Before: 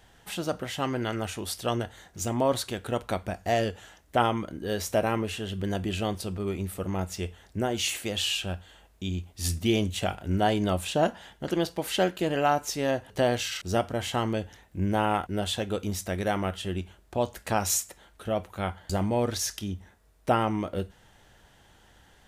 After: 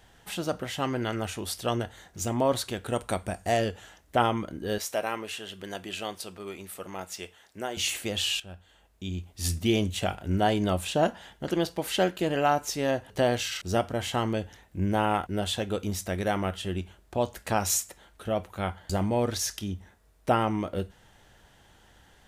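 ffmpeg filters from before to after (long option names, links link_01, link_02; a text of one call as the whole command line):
ffmpeg -i in.wav -filter_complex "[0:a]asettb=1/sr,asplit=3[link_01][link_02][link_03];[link_01]atrim=end=2.884[link_04];[link_02]atrim=start=2.88:end=3.57,asetpts=PTS-STARTPTS,afade=type=in:duration=0.004:curve=qsin,afade=type=out:start_time=0.686:duration=0.004:curve=qsin,equalizer=frequency=8800:width=2.7:gain=13[link_05];[link_03]atrim=start=3.566[link_06];[link_04][link_05]acrossfade=duration=0.004:curve1=hsin:curve2=qsin[link_07];[link_07][link_06]acrossfade=duration=0.004:curve1=qsin:curve2=hsin,asettb=1/sr,asplit=3[link_08][link_09][link_10];[link_08]atrim=end=4.784[link_11];[link_09]atrim=start=4.78:end=7.77,asetpts=PTS-STARTPTS,afade=type=in:duration=0.004:curve=qsin,afade=type=out:start_time=2.986:duration=0.004:curve=qsin,highpass=frequency=800:poles=1[link_12];[link_10]atrim=start=7.766[link_13];[link_11][link_12]acrossfade=duration=0.004:curve1=hsin:curve2=qsin[link_14];[link_14][link_13]acrossfade=duration=0.004:curve1=qsin:curve2=hsin,asplit=2[link_15][link_16];[link_15]atrim=end=8.4,asetpts=PTS-STARTPTS,afade=type=out:start_time=8.396:duration=0.004:curve=hsin:silence=0.188365[link_17];[link_16]atrim=start=8.4,asetpts=PTS-STARTPTS,afade=type=in:duration=1.03:silence=0.188365[link_18];[link_17][link_18]concat=n=2:v=0:a=1" out.wav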